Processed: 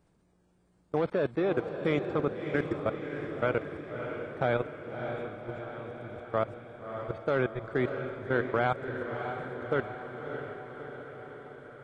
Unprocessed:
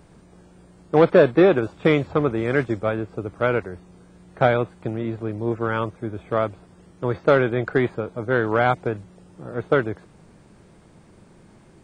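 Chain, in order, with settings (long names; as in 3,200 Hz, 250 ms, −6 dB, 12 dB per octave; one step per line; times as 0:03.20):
output level in coarse steps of 21 dB
feedback delay with all-pass diffusion 619 ms, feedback 64%, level −7 dB
level −5.5 dB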